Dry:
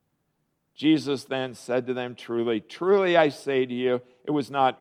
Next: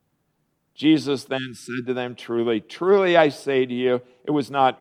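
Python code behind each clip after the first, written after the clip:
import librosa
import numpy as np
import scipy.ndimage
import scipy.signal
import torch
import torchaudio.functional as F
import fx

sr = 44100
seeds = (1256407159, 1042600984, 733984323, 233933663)

y = fx.spec_erase(x, sr, start_s=1.37, length_s=0.49, low_hz=370.0, high_hz=1300.0)
y = y * librosa.db_to_amplitude(3.5)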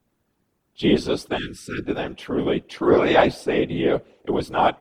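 y = fx.whisperise(x, sr, seeds[0])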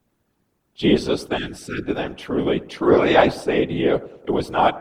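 y = fx.echo_bbd(x, sr, ms=100, stages=1024, feedback_pct=50, wet_db=-19)
y = y * librosa.db_to_amplitude(1.5)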